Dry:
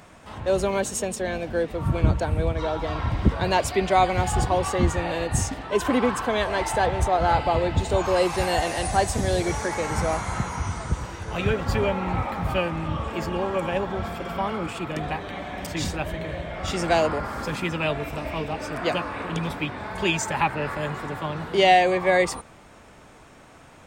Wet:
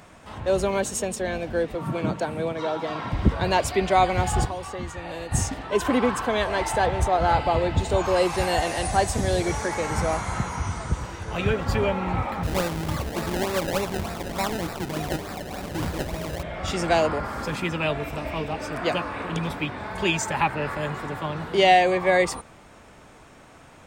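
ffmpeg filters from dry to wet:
ffmpeg -i in.wav -filter_complex "[0:a]asettb=1/sr,asplit=3[link_01][link_02][link_03];[link_01]atrim=end=1.754[link_04];[link_02]atrim=start=1.75:end=3.13,asetpts=PTS-STARTPTS,afade=type=in:duration=0.004:curve=qsin,afade=type=out:start_time=1.376:duration=0.004:curve=qsin,highpass=frequency=150:width=0.5412,highpass=frequency=150:width=1.3066[link_05];[link_03]atrim=start=3.126[link_06];[link_04][link_05]acrossfade=duration=0.004:curve1=hsin:curve2=qsin[link_07];[link_07][link_06]acrossfade=duration=0.004:curve1=qsin:curve2=hsin,asettb=1/sr,asplit=3[link_08][link_09][link_10];[link_08]atrim=end=4.454[link_11];[link_09]atrim=start=4.45:end=5.32,asetpts=PTS-STARTPTS,afade=type=in:duration=0.004:curve=qsin,afade=type=out:start_time=0.866:duration=0.004:curve=qsin,acrossover=split=940|6200[link_12][link_13][link_14];[link_12]acompressor=threshold=-33dB:ratio=4[link_15];[link_13]acompressor=threshold=-40dB:ratio=4[link_16];[link_14]acompressor=threshold=-50dB:ratio=4[link_17];[link_15][link_16][link_17]amix=inputs=3:normalize=0[link_18];[link_10]atrim=start=5.316[link_19];[link_11][link_18]acrossfade=duration=0.004:curve1=hsin:curve2=qsin[link_20];[link_20][link_19]acrossfade=duration=0.004:curve1=qsin:curve2=hsin,asettb=1/sr,asplit=3[link_21][link_22][link_23];[link_21]atrim=end=12.434[link_24];[link_22]atrim=start=12.43:end=16.43,asetpts=PTS-STARTPTS,afade=type=in:duration=0.004:curve=qsin,afade=type=out:start_time=3.996:duration=0.004:curve=qsin,acrusher=samples=27:mix=1:aa=0.000001:lfo=1:lforange=27:lforate=3.4[link_25];[link_23]atrim=start=16.426[link_26];[link_24][link_25]acrossfade=duration=0.004:curve1=hsin:curve2=qsin[link_27];[link_27][link_26]acrossfade=duration=0.004:curve1=qsin:curve2=hsin" out.wav

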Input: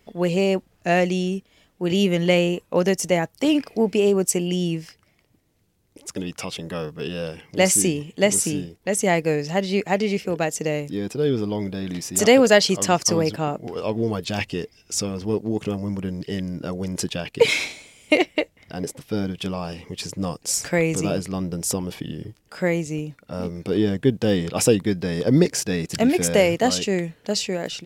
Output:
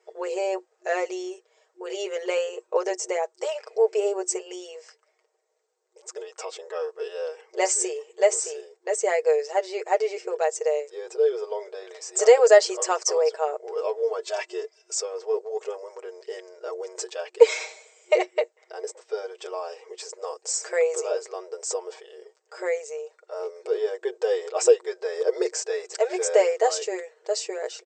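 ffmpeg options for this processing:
ffmpeg -i in.wav -filter_complex "[0:a]asettb=1/sr,asplit=3[link_01][link_02][link_03];[link_01]atrim=end=14.184[link_04];[link_02]atrim=start=14.18:end=14.99,asetpts=PTS-STARTPTS,afade=type=in:duration=0.004:curve=qsin,afade=type=out:start_time=0.806:duration=0.004:curve=qsin,aecho=1:1:3:0.69,atrim=end_sample=35721[link_05];[link_03]atrim=start=14.986[link_06];[link_04][link_05]acrossfade=duration=0.004:curve1=hsin:curve2=qsin[link_07];[link_07][link_06]acrossfade=duration=0.004:curve1=qsin:curve2=hsin,afftfilt=real='re*between(b*sr/4096,360,8400)':imag='im*between(b*sr/4096,360,8400)':win_size=4096:overlap=0.75,equalizer=frequency=3100:width=0.85:gain=-13,aecho=1:1:6.4:0.74,volume=-1dB" out.wav

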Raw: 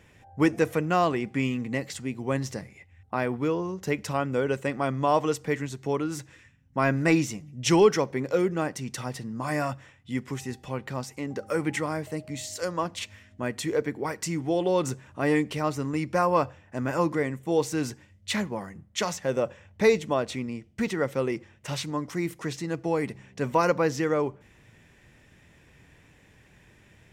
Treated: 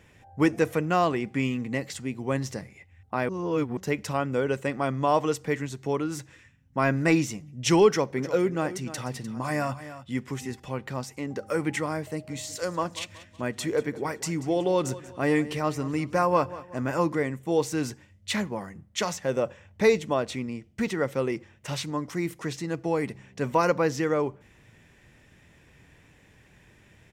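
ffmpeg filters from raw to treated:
ffmpeg -i in.wav -filter_complex "[0:a]asettb=1/sr,asplit=3[link_01][link_02][link_03];[link_01]atrim=end=7.884[link_04];[link_02]atrim=start=7.88:end=10.6,asetpts=PTS-STARTPTS,afade=type=in:duration=0.004:curve=qsin,afade=type=out:start_time=2.716:duration=0.004:curve=qsin,aecho=1:1:301:0.211,atrim=end_sample=119952[link_05];[link_03]atrim=start=10.596[link_06];[link_04][link_05]acrossfade=duration=0.004:curve1=hsin:curve2=qsin[link_07];[link_07][link_06]acrossfade=duration=0.004:curve1=qsin:curve2=hsin,asplit=3[link_08][link_09][link_10];[link_08]afade=type=out:start_time=12.27:duration=0.02[link_11];[link_09]aecho=1:1:186|372|558:0.141|0.0579|0.0237,afade=type=in:start_time=12.27:duration=0.02,afade=type=out:start_time=16.92:duration=0.02[link_12];[link_10]afade=type=in:start_time=16.92:duration=0.02[link_13];[link_11][link_12][link_13]amix=inputs=3:normalize=0,asplit=3[link_14][link_15][link_16];[link_14]atrim=end=3.292[link_17];[link_15]atrim=start=3.288:end=3.772,asetpts=PTS-STARTPTS,areverse[link_18];[link_16]atrim=start=3.768[link_19];[link_17][link_18]acrossfade=duration=0.004:curve1=hsin:curve2=hsin[link_20];[link_20][link_19]acrossfade=duration=0.004:curve1=hsin:curve2=hsin" out.wav

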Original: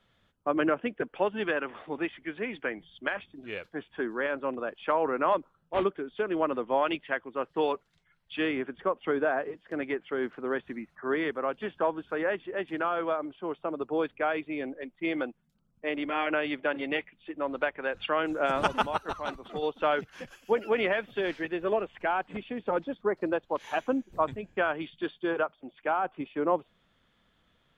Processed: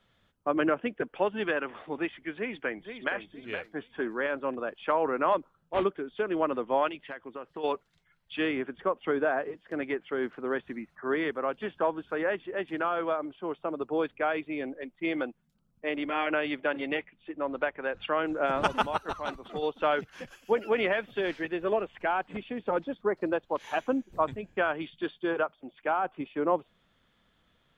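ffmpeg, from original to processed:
ffmpeg -i in.wav -filter_complex "[0:a]asplit=2[link_01][link_02];[link_02]afade=type=in:start_time=2.37:duration=0.01,afade=type=out:start_time=3.14:duration=0.01,aecho=0:1:470|940|1410:0.375837|0.0939594|0.0234898[link_03];[link_01][link_03]amix=inputs=2:normalize=0,asplit=3[link_04][link_05][link_06];[link_04]afade=type=out:start_time=6.88:duration=0.02[link_07];[link_05]acompressor=threshold=-35dB:ratio=6:attack=3.2:release=140:knee=1:detection=peak,afade=type=in:start_time=6.88:duration=0.02,afade=type=out:start_time=7.63:duration=0.02[link_08];[link_06]afade=type=in:start_time=7.63:duration=0.02[link_09];[link_07][link_08][link_09]amix=inputs=3:normalize=0,asettb=1/sr,asplit=3[link_10][link_11][link_12];[link_10]atrim=end=16.944[link_13];[link_11]atrim=start=16.94:end=18.64,asetpts=PTS-STARTPTS,afade=type=in:duration=0.004:curve=qsin,afade=type=out:start_time=1.696:duration=0.004:curve=qsin,lowpass=frequency=2700:poles=1[link_14];[link_12]atrim=start=18.636[link_15];[link_13][link_14]acrossfade=duration=0.004:curve1=hsin:curve2=qsin[link_16];[link_16][link_15]acrossfade=duration=0.004:curve1=qsin:curve2=hsin" out.wav

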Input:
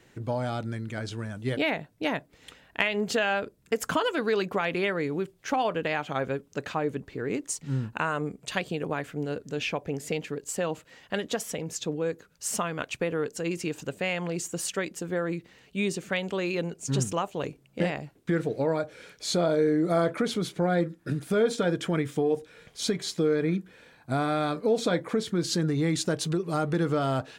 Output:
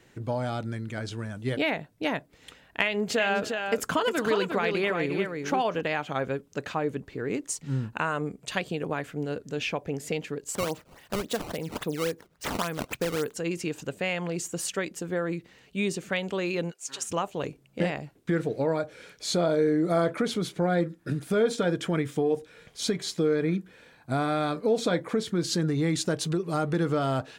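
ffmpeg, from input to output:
ffmpeg -i in.wav -filter_complex "[0:a]asettb=1/sr,asplit=3[link_01][link_02][link_03];[link_01]atrim=end=2.844[link_04];[link_02]atrim=start=2.84:end=5.81,asetpts=PTS-STARTPTS,afade=type=in:duration=0.004:curve=qsin,afade=type=out:start_time=2.966:duration=0.004:curve=qsin,aecho=1:1:256|354:0.106|0.531,atrim=end_sample=130977[link_05];[link_03]atrim=start=5.806[link_06];[link_04][link_05]acrossfade=duration=0.004:curve1=hsin:curve2=qsin[link_07];[link_07][link_06]acrossfade=duration=0.004:curve1=qsin:curve2=hsin,asettb=1/sr,asplit=3[link_08][link_09][link_10];[link_08]atrim=end=10.554[link_11];[link_09]atrim=start=10.55:end=13.34,asetpts=PTS-STARTPTS,afade=type=in:duration=0.004:curve=qsin,afade=type=out:start_time=2.786:duration=0.004:curve=qsin,acrusher=samples=15:mix=1:aa=0.000001:lfo=1:lforange=24:lforate=3.6[link_12];[link_10]atrim=start=13.336[link_13];[link_11][link_12]acrossfade=duration=0.004:curve1=hsin:curve2=qsin[link_14];[link_14][link_13]acrossfade=duration=0.004:curve1=qsin:curve2=hsin,asplit=3[link_15][link_16][link_17];[link_15]afade=type=out:start_time=16.7:duration=0.02[link_18];[link_16]highpass=1100,afade=type=in:start_time=16.7:duration=0.02,afade=type=out:start_time=17.1:duration=0.02[link_19];[link_17]afade=type=in:start_time=17.1:duration=0.02[link_20];[link_18][link_19][link_20]amix=inputs=3:normalize=0" out.wav

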